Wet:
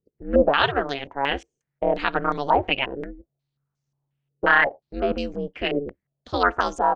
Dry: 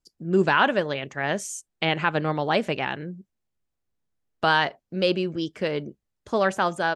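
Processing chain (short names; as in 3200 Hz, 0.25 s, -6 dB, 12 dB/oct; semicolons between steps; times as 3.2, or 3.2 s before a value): ring modulator 140 Hz; stepped low-pass 5.6 Hz 430–6100 Hz; gain +1 dB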